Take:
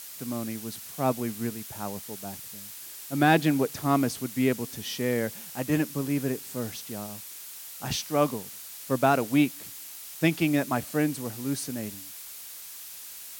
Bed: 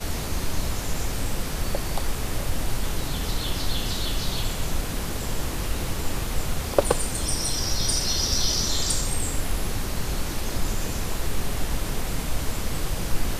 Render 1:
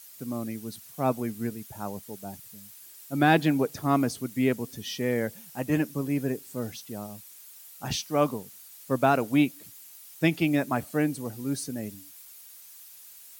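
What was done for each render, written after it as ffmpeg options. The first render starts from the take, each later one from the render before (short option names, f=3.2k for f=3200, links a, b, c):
-af "afftdn=nr=10:nf=-43"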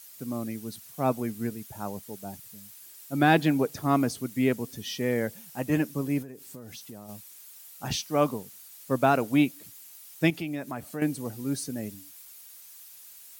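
-filter_complex "[0:a]asettb=1/sr,asplit=3[a][b][c];[a]atrim=end=6.224[d];[b]atrim=start=6.22:end=7.09,asetpts=PTS-STARTPTS,afade=t=in:d=0.004:c=qsin,afade=t=out:st=0.866:d=0.004:c=qsin,acompressor=threshold=-38dB:ratio=12:attack=3.2:release=140:knee=1:detection=peak[e];[c]atrim=start=7.086[f];[d][e]acrossfade=d=0.004:c1=hsin:c2=qsin[g];[g][f]acrossfade=d=0.004:c1=qsin:c2=hsin,asettb=1/sr,asplit=3[h][i][j];[h]atrim=end=10.304[k];[i]atrim=start=10.3:end=11.02,asetpts=PTS-STARTPTS,afade=t=in:d=0.004:c=qsin,afade=t=out:st=0.716:d=0.004:c=qsin,acompressor=threshold=-36dB:ratio=2:attack=3.2:release=140:knee=1:detection=peak[l];[j]atrim=start=11.016[m];[k][l]acrossfade=d=0.004:c1=hsin:c2=qsin[n];[n][m]acrossfade=d=0.004:c1=qsin:c2=hsin"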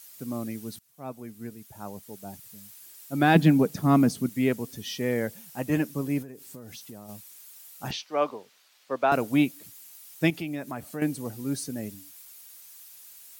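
-filter_complex "[0:a]asettb=1/sr,asplit=3[a][b][c];[a]atrim=end=3.354[d];[b]atrim=start=3.35:end=4.29,asetpts=PTS-STARTPTS,afade=t=in:d=0.004:c=qsin,afade=t=out:st=0.936:d=0.004:c=qsin,equalizer=f=190:t=o:w=0.77:g=14[e];[c]atrim=start=4.286[f];[d][e]acrossfade=d=0.004:c1=hsin:c2=qsin[g];[g][f]acrossfade=d=0.004:c1=qsin:c2=hsin,asettb=1/sr,asplit=3[h][i][j];[h]atrim=end=7.914[k];[i]atrim=start=7.91:end=9.12,asetpts=PTS-STARTPTS,afade=t=in:d=0.004:c=qsin,afade=t=out:st=1.206:d=0.004:c=qsin,acrossover=split=350 5000:gain=0.1 1 0.0891[l][m][n];[l][m][n]amix=inputs=3:normalize=0[o];[j]atrim=start=9.116[p];[k][o]acrossfade=d=0.004:c1=hsin:c2=qsin[q];[q][p]acrossfade=d=0.004:c1=qsin:c2=hsin,asplit=2[r][s];[r]atrim=end=0.79,asetpts=PTS-STARTPTS,afade=t=out:st=0.786:d=0.004:c=hsin:silence=0.1[t];[s]atrim=start=0.79,asetpts=PTS-STARTPTS,afade=t=in:d=1.83:silence=0.1[u];[t][u]concat=n=2:v=0:a=1"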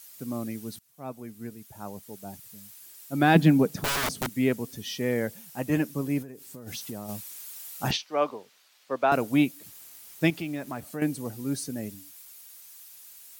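-filter_complex "[0:a]asettb=1/sr,asplit=3[a][b][c];[a]atrim=end=3.794[d];[b]atrim=start=3.79:end=4.38,asetpts=PTS-STARTPTS,afade=t=in:d=0.004:c=qsin,afade=t=out:st=0.586:d=0.004:c=qsin,aeval=exprs='(mod(13.3*val(0)+1,2)-1)/13.3':c=same[e];[c]atrim=start=4.376[f];[d][e]acrossfade=d=0.004:c1=hsin:c2=qsin[g];[g][f]acrossfade=d=0.004:c1=qsin:c2=hsin,asplit=3[h][i][j];[h]afade=t=out:st=6.66:d=0.02[k];[i]acontrast=66,afade=t=in:st=6.66:d=0.02,afade=t=out:st=7.96:d=0.02[l];[j]afade=t=in:st=7.96:d=0.02[m];[k][l][m]amix=inputs=3:normalize=0,asettb=1/sr,asplit=3[n][o][p];[n]atrim=end=9.664[q];[o]atrim=start=9.66:end=10.81,asetpts=PTS-STARTPTS,afade=t=in:d=0.004:c=qsin,afade=t=out:st=1.146:d=0.004:c=qsin,acrusher=bits=7:mix=0:aa=0.5[r];[p]atrim=start=10.806[s];[q][r]acrossfade=d=0.004:c1=hsin:c2=qsin[t];[t][s]acrossfade=d=0.004:c1=qsin:c2=hsin"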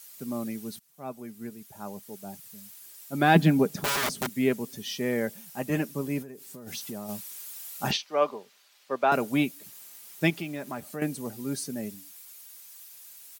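-af "highpass=f=120:p=1,aecho=1:1:5:0.31"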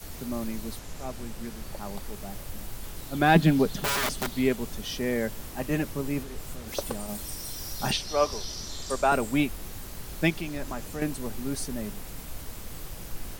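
-filter_complex "[1:a]volume=-13dB[a];[0:a][a]amix=inputs=2:normalize=0"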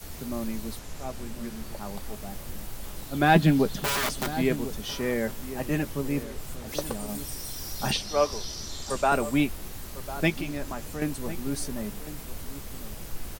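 -filter_complex "[0:a]asplit=2[a][b];[b]adelay=14,volume=-14dB[c];[a][c]amix=inputs=2:normalize=0,asplit=2[d][e];[e]adelay=1050,volume=-13dB,highshelf=f=4k:g=-23.6[f];[d][f]amix=inputs=2:normalize=0"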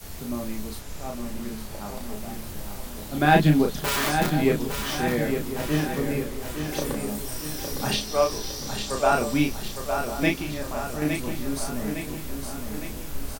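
-filter_complex "[0:a]asplit=2[a][b];[b]adelay=33,volume=-3.5dB[c];[a][c]amix=inputs=2:normalize=0,aecho=1:1:859|1718|2577|3436|4295|5154|6013:0.447|0.241|0.13|0.0703|0.038|0.0205|0.0111"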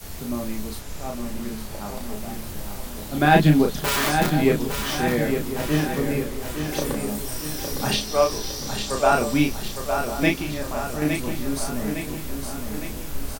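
-af "volume=2.5dB,alimiter=limit=-3dB:level=0:latency=1"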